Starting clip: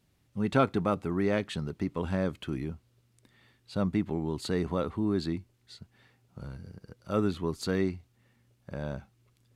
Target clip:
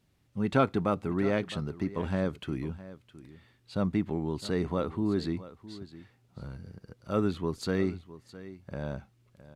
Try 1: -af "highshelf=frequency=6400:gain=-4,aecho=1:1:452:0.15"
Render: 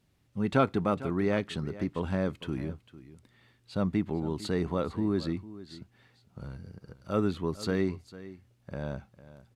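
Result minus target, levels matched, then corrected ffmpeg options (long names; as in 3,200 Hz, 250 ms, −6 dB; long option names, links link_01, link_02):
echo 210 ms early
-af "highshelf=frequency=6400:gain=-4,aecho=1:1:662:0.15"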